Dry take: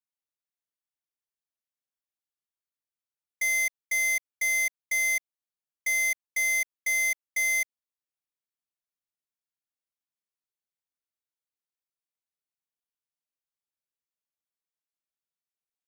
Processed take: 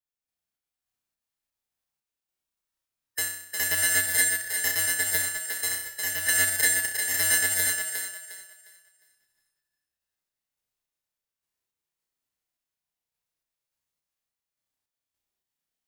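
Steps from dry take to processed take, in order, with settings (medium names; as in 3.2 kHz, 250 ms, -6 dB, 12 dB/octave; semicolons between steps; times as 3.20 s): slices played last to first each 116 ms, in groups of 3; bass shelf 160 Hz +8.5 dB; flutter echo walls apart 5.6 m, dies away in 0.71 s; random-step tremolo; thinning echo 356 ms, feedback 29%, high-pass 310 Hz, level -5 dB; formant shift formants -3 st; trim +4 dB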